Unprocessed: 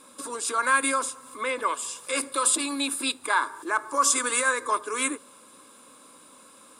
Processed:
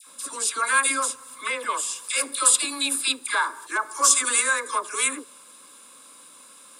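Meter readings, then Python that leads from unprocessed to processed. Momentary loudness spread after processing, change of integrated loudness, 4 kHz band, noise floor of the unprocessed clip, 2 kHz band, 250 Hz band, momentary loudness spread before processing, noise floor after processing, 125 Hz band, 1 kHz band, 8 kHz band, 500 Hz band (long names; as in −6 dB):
10 LU, +3.0 dB, +4.5 dB, −53 dBFS, +2.0 dB, −5.0 dB, 9 LU, −49 dBFS, can't be measured, −0.5 dB, +5.5 dB, −3.5 dB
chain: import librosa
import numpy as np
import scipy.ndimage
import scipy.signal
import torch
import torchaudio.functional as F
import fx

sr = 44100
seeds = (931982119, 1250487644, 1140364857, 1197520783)

y = fx.tilt_shelf(x, sr, db=-5.5, hz=1200.0)
y = fx.dispersion(y, sr, late='lows', ms=73.0, hz=1200.0)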